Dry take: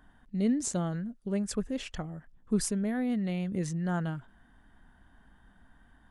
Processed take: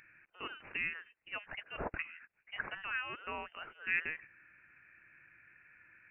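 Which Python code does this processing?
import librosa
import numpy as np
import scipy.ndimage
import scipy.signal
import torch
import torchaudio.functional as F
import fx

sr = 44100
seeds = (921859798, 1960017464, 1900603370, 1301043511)

y = scipy.signal.sosfilt(scipy.signal.butter(4, 800.0, 'highpass', fs=sr, output='sos'), x)
y = fx.dynamic_eq(y, sr, hz=2000.0, q=0.77, threshold_db=-56.0, ratio=4.0, max_db=6, at=(2.04, 2.81), fade=0.02)
y = fx.freq_invert(y, sr, carrier_hz=3300)
y = F.gain(torch.from_numpy(y), 6.0).numpy()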